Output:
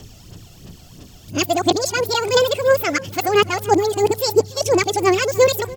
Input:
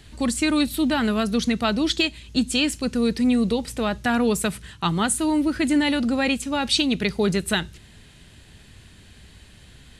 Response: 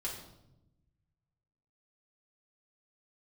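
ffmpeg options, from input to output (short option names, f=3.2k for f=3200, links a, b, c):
-filter_complex "[0:a]areverse,acrossover=split=2500[a][b];[b]alimiter=limit=-20.5dB:level=0:latency=1:release=165[c];[a][c]amix=inputs=2:normalize=0,aphaser=in_gain=1:out_gain=1:delay=2.6:decay=0.59:speed=1.7:type=sinusoidal,asplit=2[d][e];[e]adelay=501,lowpass=f=2k:p=1,volume=-21dB,asplit=2[f][g];[g]adelay=501,lowpass=f=2k:p=1,volume=0.51,asplit=2[h][i];[i]adelay=501,lowpass=f=2k:p=1,volume=0.51,asplit=2[j][k];[k]adelay=501,lowpass=f=2k:p=1,volume=0.51[l];[d][f][h][j][l]amix=inputs=5:normalize=0,asetrate=76440,aresample=44100,volume=2dB"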